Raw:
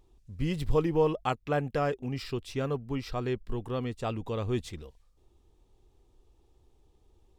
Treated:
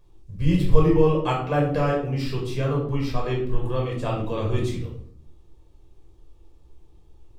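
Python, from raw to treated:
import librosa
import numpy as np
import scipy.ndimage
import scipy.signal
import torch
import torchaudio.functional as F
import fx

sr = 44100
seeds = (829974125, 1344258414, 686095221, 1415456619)

y = fx.room_shoebox(x, sr, seeds[0], volume_m3=850.0, walls='furnished', distance_m=5.4)
y = y * 10.0 ** (-1.0 / 20.0)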